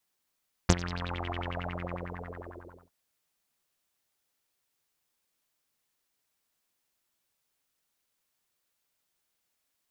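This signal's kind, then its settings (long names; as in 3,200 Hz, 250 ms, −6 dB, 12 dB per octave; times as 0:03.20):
subtractive patch with filter wobble F2, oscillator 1 saw, oscillator 2 saw, interval +12 semitones, filter lowpass, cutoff 640 Hz, Q 8.3, filter envelope 2.5 octaves, filter decay 0.51 s, filter sustain 50%, attack 3.9 ms, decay 0.05 s, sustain −18.5 dB, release 1.48 s, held 0.73 s, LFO 11 Hz, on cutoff 1.1 octaves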